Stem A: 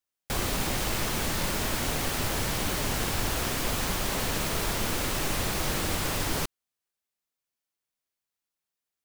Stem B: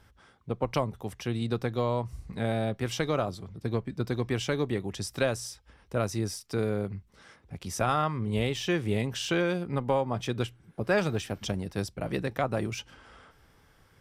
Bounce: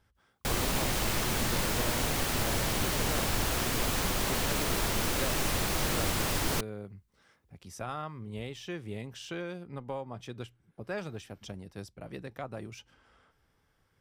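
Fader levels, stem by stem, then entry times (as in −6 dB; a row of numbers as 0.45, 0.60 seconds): −1.0, −11.0 decibels; 0.15, 0.00 seconds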